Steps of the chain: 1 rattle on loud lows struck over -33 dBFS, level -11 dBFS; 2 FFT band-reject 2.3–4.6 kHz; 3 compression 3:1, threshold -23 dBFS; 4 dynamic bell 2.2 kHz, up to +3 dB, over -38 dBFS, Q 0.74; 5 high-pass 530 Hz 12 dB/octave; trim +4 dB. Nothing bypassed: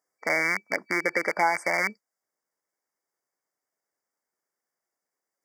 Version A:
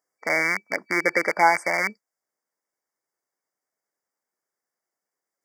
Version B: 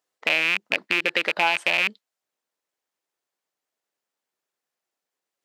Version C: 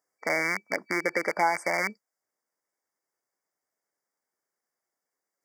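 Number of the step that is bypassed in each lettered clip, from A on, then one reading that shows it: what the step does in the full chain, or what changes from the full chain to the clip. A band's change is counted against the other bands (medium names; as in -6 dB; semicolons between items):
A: 3, 1 kHz band +2.0 dB; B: 2, 4 kHz band +17.5 dB; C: 4, loudness change -2.0 LU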